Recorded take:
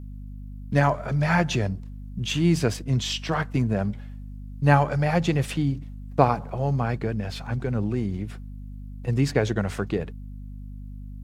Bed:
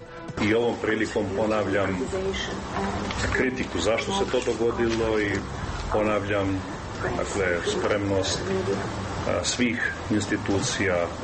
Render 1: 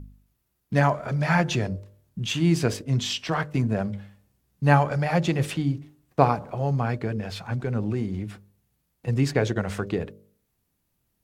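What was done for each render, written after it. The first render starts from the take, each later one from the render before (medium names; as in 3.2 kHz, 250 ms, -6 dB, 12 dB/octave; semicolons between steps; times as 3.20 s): de-hum 50 Hz, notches 12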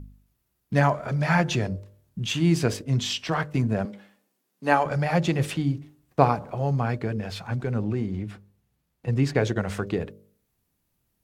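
3.85–4.86 s: high-pass 240 Hz 24 dB/octave; 7.82–9.35 s: treble shelf 5.8 kHz -7.5 dB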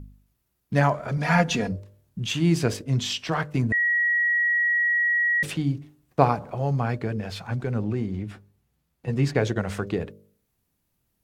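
1.17–1.72 s: comb 4.2 ms, depth 77%; 3.72–5.43 s: bleep 1.91 kHz -19 dBFS; 8.30–9.28 s: doubling 13 ms -7 dB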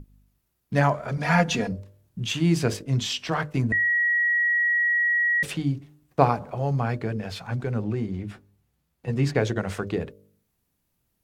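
hum notches 50/100/150/200/250/300/350 Hz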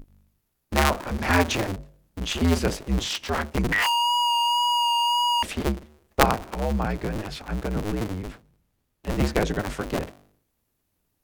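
cycle switcher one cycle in 2, inverted; wow and flutter 18 cents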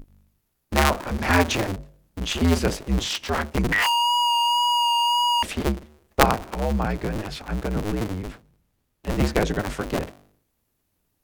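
trim +1.5 dB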